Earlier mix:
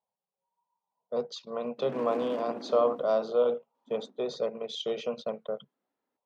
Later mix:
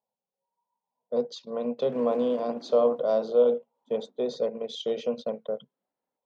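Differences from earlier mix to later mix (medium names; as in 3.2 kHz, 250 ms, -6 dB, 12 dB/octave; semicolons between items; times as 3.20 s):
speech: add graphic EQ with 31 bands 250 Hz +8 dB, 500 Hz +5 dB, 1.25 kHz -8 dB, 2.5 kHz -4 dB; background -6.0 dB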